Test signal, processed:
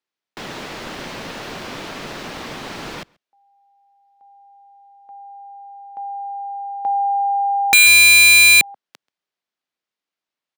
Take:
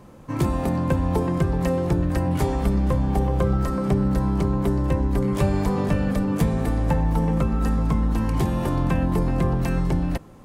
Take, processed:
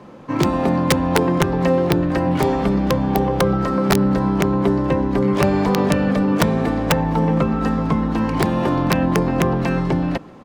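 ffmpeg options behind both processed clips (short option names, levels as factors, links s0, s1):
-filter_complex "[0:a]acrossover=split=150 5400:gain=0.158 1 0.126[s0][s1][s2];[s0][s1][s2]amix=inputs=3:normalize=0,asplit=2[s3][s4];[s4]adelay=134.1,volume=0.0398,highshelf=f=4000:g=-3.02[s5];[s3][s5]amix=inputs=2:normalize=0,aeval=exprs='(mod(5.01*val(0)+1,2)-1)/5.01':c=same,volume=2.37"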